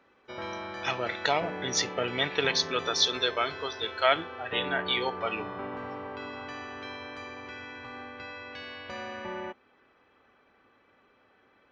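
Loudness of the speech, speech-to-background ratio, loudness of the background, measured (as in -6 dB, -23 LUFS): -28.5 LUFS, 10.0 dB, -38.5 LUFS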